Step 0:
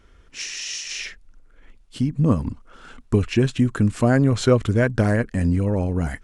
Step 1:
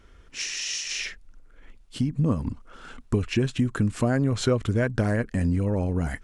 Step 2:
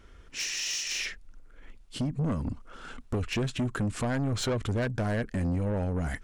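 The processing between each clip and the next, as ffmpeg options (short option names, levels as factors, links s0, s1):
-af "acompressor=threshold=0.0708:ratio=2"
-af "asoftclip=type=tanh:threshold=0.0596"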